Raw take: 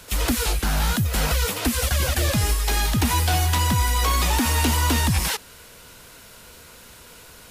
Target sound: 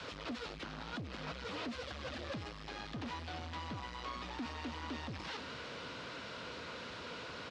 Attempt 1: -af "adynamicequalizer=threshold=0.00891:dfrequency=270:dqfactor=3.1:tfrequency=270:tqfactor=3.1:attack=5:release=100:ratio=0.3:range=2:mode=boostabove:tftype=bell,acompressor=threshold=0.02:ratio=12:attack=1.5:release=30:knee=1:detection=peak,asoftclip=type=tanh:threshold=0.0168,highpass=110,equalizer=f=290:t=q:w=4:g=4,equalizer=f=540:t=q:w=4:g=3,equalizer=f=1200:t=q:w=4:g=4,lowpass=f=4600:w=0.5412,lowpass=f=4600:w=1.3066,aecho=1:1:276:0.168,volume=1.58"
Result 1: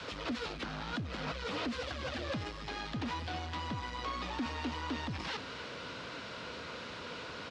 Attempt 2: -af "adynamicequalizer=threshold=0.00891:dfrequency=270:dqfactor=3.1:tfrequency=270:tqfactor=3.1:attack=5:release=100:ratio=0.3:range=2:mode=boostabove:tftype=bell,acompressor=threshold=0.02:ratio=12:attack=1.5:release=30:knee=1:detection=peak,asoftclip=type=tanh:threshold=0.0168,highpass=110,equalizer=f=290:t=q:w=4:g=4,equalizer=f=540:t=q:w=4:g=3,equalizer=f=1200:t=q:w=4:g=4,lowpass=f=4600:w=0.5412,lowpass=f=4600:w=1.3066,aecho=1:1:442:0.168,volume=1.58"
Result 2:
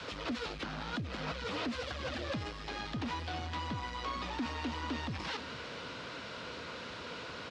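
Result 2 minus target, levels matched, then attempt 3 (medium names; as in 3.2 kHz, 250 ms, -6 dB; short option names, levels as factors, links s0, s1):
saturation: distortion -7 dB
-af "adynamicequalizer=threshold=0.00891:dfrequency=270:dqfactor=3.1:tfrequency=270:tqfactor=3.1:attack=5:release=100:ratio=0.3:range=2:mode=boostabove:tftype=bell,acompressor=threshold=0.02:ratio=12:attack=1.5:release=30:knee=1:detection=peak,asoftclip=type=tanh:threshold=0.00708,highpass=110,equalizer=f=290:t=q:w=4:g=4,equalizer=f=540:t=q:w=4:g=3,equalizer=f=1200:t=q:w=4:g=4,lowpass=f=4600:w=0.5412,lowpass=f=4600:w=1.3066,aecho=1:1:442:0.168,volume=1.58"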